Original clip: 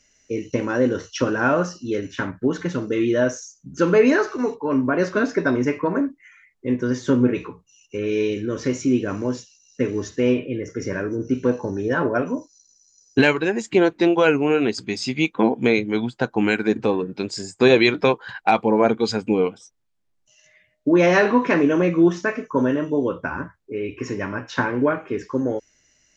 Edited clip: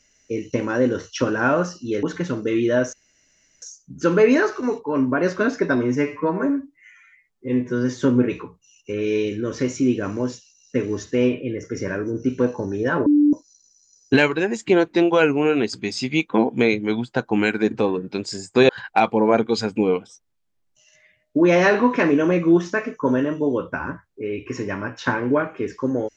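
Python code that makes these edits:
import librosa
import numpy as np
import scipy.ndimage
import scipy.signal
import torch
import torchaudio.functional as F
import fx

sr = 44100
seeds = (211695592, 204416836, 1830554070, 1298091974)

y = fx.edit(x, sr, fx.cut(start_s=2.03, length_s=0.45),
    fx.insert_room_tone(at_s=3.38, length_s=0.69),
    fx.stretch_span(start_s=5.52, length_s=1.42, factor=1.5),
    fx.bleep(start_s=12.11, length_s=0.27, hz=294.0, db=-11.5),
    fx.cut(start_s=17.74, length_s=0.46), tone=tone)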